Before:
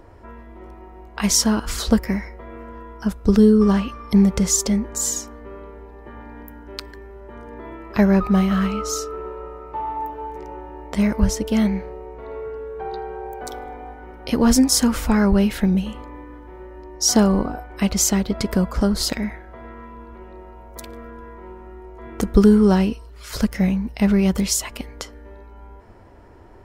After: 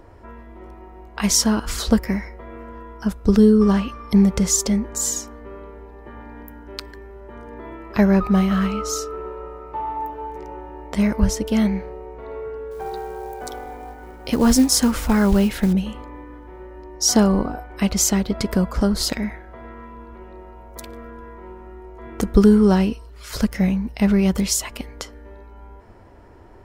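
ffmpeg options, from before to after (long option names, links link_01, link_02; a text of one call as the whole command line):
ffmpeg -i in.wav -filter_complex "[0:a]asettb=1/sr,asplit=3[link_01][link_02][link_03];[link_01]atrim=end=12.714[link_04];[link_02]atrim=start=12.71:end=15.73,asetpts=PTS-STARTPTS,afade=type=in:duration=0.004:curve=qsin,afade=type=out:start_time=3.016:duration=0.004:curve=qsin,acrusher=bits=6:mode=log:mix=0:aa=0.000001[link_05];[link_03]atrim=start=15.726[link_06];[link_04][link_05]acrossfade=duration=0.004:curve1=hsin:curve2=qsin[link_07];[link_07][link_06]acrossfade=duration=0.004:curve1=qsin:curve2=hsin" out.wav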